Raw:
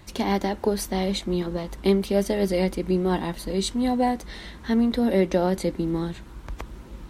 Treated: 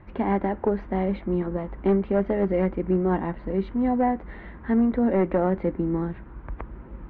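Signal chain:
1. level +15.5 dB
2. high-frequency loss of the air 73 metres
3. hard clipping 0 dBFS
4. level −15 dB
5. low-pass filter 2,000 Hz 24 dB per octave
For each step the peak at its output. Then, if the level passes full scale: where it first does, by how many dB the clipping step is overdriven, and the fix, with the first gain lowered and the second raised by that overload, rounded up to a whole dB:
+6.0, +6.0, 0.0, −15.0, −14.0 dBFS
step 1, 6.0 dB
step 1 +9.5 dB, step 4 −9 dB

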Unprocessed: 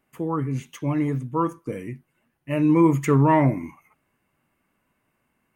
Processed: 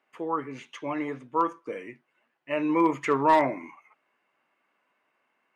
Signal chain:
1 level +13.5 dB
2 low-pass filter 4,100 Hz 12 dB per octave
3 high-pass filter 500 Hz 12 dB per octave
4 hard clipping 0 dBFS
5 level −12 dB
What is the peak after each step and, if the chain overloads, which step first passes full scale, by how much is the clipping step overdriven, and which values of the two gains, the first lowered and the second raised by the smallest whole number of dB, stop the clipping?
+6.5, +6.5, +5.0, 0.0, −12.0 dBFS
step 1, 5.0 dB
step 1 +8.5 dB, step 5 −7 dB

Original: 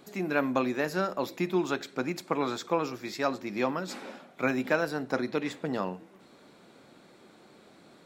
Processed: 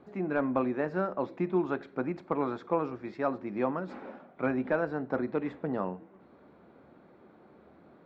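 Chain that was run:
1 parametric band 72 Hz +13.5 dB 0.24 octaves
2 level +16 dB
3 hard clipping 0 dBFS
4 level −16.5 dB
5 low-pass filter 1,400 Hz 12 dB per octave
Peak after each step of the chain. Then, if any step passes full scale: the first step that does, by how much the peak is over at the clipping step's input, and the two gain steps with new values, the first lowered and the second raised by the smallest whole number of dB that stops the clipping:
−11.0, +5.0, 0.0, −16.5, −16.0 dBFS
step 2, 5.0 dB
step 2 +11 dB, step 4 −11.5 dB

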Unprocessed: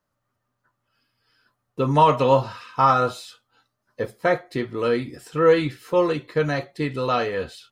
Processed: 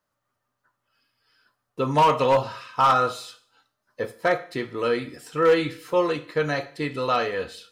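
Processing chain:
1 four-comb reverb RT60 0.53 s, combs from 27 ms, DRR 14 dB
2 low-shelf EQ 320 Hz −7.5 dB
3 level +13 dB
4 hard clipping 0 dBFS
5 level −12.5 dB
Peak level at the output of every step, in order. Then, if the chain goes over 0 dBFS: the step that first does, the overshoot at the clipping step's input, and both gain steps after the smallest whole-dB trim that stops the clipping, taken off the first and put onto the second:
−5.0, −6.0, +7.0, 0.0, −12.5 dBFS
step 3, 7.0 dB
step 3 +6 dB, step 5 −5.5 dB

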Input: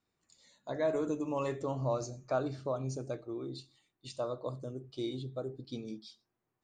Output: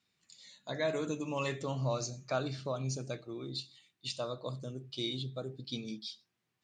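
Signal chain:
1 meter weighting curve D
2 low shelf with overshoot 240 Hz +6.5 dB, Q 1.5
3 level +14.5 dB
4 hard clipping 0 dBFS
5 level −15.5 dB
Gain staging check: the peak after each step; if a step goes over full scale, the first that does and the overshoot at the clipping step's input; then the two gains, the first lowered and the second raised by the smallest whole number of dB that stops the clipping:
−19.0, −19.0, −4.5, −4.5, −20.0 dBFS
no step passes full scale

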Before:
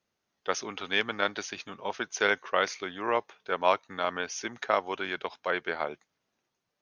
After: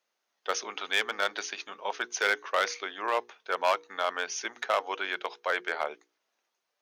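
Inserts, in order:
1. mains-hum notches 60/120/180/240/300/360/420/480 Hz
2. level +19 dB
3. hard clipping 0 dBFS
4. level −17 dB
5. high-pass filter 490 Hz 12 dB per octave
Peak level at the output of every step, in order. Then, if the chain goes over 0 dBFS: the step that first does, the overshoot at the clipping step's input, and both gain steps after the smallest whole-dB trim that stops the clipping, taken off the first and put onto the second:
−9.0, +10.0, 0.0, −17.0, −12.0 dBFS
step 2, 10.0 dB
step 2 +9 dB, step 4 −7 dB

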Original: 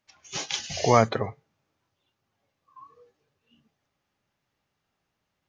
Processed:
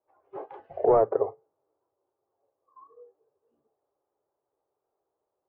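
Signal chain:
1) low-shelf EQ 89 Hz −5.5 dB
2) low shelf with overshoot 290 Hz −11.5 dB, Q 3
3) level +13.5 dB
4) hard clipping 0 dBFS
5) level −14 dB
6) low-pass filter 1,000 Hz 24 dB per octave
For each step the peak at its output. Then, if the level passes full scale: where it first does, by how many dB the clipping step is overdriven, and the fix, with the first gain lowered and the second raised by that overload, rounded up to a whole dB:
−4.0, −4.0, +9.5, 0.0, −14.0, −12.0 dBFS
step 3, 9.5 dB
step 3 +3.5 dB, step 5 −4 dB

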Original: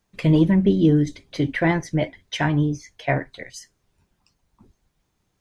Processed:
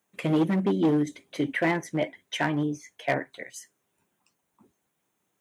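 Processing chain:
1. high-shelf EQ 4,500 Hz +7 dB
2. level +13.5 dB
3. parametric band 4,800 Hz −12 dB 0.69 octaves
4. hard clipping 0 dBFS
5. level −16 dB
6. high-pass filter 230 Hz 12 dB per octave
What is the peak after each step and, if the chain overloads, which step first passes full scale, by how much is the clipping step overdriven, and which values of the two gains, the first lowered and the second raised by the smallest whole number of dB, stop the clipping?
−7.0, +6.5, +6.5, 0.0, −16.0, −11.0 dBFS
step 2, 6.5 dB
step 2 +6.5 dB, step 5 −9 dB

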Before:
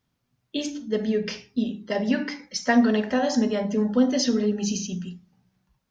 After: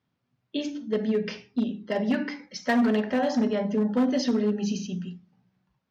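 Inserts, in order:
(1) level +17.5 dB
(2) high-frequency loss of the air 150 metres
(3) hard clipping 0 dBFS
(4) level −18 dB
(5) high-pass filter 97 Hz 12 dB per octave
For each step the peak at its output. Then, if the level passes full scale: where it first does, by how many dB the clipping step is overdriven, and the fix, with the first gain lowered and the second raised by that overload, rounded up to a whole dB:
+8.5, +8.5, 0.0, −18.0, −14.0 dBFS
step 1, 8.5 dB
step 1 +8.5 dB, step 4 −9 dB

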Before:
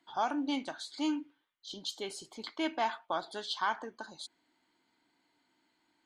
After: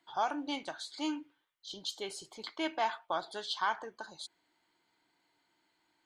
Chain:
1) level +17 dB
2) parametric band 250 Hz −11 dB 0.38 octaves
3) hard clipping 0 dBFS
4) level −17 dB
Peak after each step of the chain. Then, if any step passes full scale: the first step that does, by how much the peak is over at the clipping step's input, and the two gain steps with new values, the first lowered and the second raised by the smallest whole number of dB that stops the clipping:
−2.5, −2.5, −2.5, −19.5 dBFS
no step passes full scale

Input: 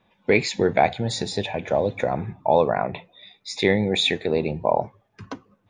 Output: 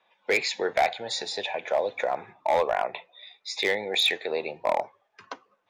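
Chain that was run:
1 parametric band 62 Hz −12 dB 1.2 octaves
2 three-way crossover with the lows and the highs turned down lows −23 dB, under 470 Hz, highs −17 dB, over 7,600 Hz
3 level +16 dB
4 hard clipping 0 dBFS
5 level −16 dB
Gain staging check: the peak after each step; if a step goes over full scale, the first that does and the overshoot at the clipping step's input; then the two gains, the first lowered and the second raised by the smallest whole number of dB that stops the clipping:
−5.0, −6.5, +9.5, 0.0, −16.0 dBFS
step 3, 9.5 dB
step 3 +6 dB, step 5 −6 dB

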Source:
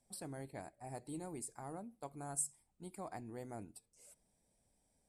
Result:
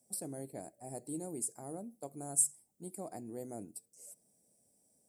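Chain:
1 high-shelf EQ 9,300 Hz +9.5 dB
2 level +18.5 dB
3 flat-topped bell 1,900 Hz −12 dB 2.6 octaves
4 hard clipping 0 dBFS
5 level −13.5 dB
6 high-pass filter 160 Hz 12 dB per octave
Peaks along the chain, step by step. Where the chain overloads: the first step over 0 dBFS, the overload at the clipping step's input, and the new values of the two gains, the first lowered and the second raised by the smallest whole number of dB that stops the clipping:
−20.5, −2.0, −2.0, −2.0, −15.5, −15.5 dBFS
no step passes full scale

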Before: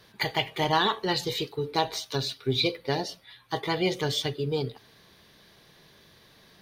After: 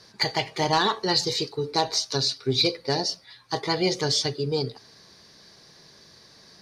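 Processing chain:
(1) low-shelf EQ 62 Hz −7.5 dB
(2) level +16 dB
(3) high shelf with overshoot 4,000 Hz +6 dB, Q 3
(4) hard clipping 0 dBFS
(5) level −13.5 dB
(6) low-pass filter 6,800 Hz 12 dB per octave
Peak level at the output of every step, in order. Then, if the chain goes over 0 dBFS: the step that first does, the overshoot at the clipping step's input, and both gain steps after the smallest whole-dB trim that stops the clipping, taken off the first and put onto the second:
−10.5, +5.5, +8.0, 0.0, −13.5, −12.5 dBFS
step 2, 8.0 dB
step 2 +8 dB, step 5 −5.5 dB

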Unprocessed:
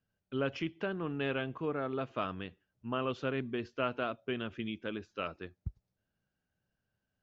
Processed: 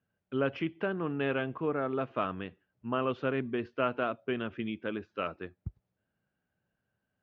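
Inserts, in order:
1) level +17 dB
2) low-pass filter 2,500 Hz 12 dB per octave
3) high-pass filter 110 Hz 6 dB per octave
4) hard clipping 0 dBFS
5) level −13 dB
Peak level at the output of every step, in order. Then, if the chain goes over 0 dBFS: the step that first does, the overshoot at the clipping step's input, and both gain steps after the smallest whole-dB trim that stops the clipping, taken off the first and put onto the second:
−2.0, −2.5, −2.0, −2.0, −15.0 dBFS
no step passes full scale

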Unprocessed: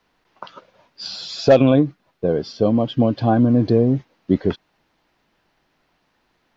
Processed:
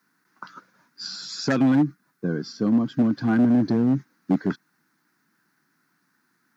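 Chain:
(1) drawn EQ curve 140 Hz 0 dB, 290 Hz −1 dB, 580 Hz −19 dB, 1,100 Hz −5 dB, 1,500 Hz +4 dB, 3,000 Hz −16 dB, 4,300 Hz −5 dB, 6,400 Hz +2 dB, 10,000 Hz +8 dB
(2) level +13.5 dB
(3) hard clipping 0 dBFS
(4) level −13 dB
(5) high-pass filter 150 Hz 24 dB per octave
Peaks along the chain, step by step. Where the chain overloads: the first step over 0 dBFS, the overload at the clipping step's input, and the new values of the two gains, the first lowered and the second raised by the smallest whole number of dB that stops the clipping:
−6.0, +7.5, 0.0, −13.0, −10.0 dBFS
step 2, 7.5 dB
step 2 +5.5 dB, step 4 −5 dB

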